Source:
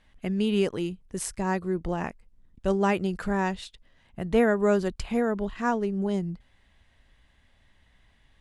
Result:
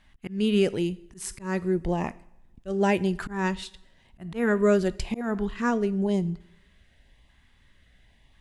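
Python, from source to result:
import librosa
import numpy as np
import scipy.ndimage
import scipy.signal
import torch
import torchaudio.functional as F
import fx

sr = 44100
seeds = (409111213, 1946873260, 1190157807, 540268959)

y = fx.filter_lfo_notch(x, sr, shape='saw_up', hz=0.96, low_hz=460.0, high_hz=1600.0, q=2.0)
y = fx.rev_double_slope(y, sr, seeds[0], early_s=0.61, late_s=1.6, knee_db=-18, drr_db=16.0)
y = fx.auto_swell(y, sr, attack_ms=184.0)
y = F.gain(torch.from_numpy(y), 2.5).numpy()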